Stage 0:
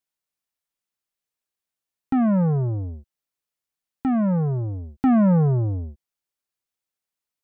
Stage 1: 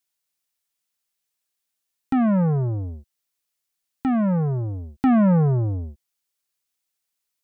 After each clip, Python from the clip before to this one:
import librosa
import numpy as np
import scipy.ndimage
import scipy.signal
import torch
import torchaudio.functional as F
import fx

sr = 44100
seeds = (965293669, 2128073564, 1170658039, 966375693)

y = fx.high_shelf(x, sr, hz=2100.0, db=8.5)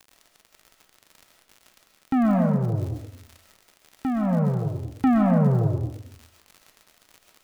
y = fx.dmg_crackle(x, sr, seeds[0], per_s=80.0, level_db=-33.0)
y = y * (1.0 - 0.35 / 2.0 + 0.35 / 2.0 * np.cos(2.0 * np.pi * 1.8 * (np.arange(len(y)) / sr)))
y = fx.rev_freeverb(y, sr, rt60_s=0.62, hf_ratio=0.6, predelay_ms=90, drr_db=2.0)
y = y * 10.0 ** (-1.0 / 20.0)